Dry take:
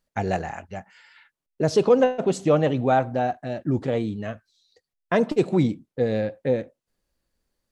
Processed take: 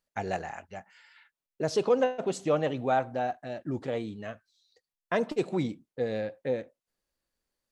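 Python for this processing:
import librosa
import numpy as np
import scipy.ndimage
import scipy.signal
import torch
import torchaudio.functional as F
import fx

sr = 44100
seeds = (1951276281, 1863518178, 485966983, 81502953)

y = fx.low_shelf(x, sr, hz=310.0, db=-8.0)
y = y * librosa.db_to_amplitude(-4.5)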